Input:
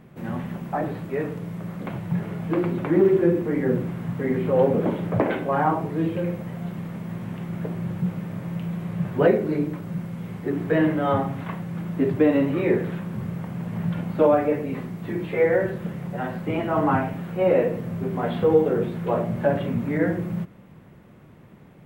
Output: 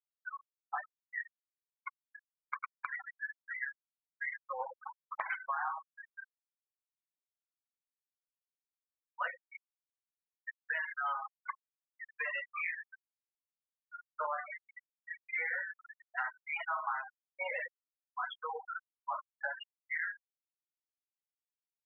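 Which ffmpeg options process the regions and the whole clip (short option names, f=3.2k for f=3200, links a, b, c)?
-filter_complex "[0:a]asettb=1/sr,asplit=3[a][b][c];[a]atrim=end=15.754[d];[b]atrim=start=15.75:end=16.3,asetpts=PTS-STARTPTS,afade=t=in:d=0.004:c=qsin,afade=t=out:st=0.546:d=0.004:c=qsin,highpass=510,acontrast=83[e];[c]atrim=start=16.296[f];[d][e]acrossfade=d=0.004:c1=hsin:c2=qsin[g];[g][f]acrossfade=d=0.004:c1=qsin:c2=hsin,highpass=f=1.1k:w=0.5412,highpass=f=1.1k:w=1.3066,afftfilt=real='re*gte(hypot(re,im),0.0447)':imag='im*gte(hypot(re,im),0.0447)':win_size=1024:overlap=0.75,acompressor=threshold=-38dB:ratio=6,volume=4.5dB"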